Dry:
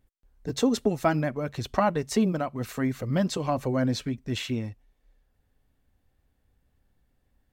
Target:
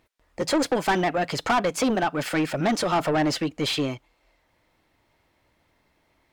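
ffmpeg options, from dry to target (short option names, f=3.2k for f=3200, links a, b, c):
-filter_complex "[0:a]asplit=2[a][b];[b]highpass=f=720:p=1,volume=25dB,asoftclip=type=tanh:threshold=-10dB[c];[a][c]amix=inputs=2:normalize=0,lowpass=f=2.8k:p=1,volume=-6dB,asetrate=52479,aresample=44100,volume=-3.5dB"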